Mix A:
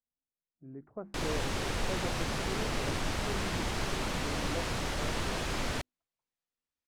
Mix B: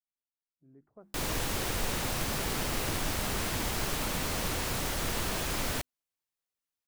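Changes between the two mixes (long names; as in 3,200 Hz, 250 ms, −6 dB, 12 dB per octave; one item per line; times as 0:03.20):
speech −12.0 dB
master: remove high-frequency loss of the air 64 metres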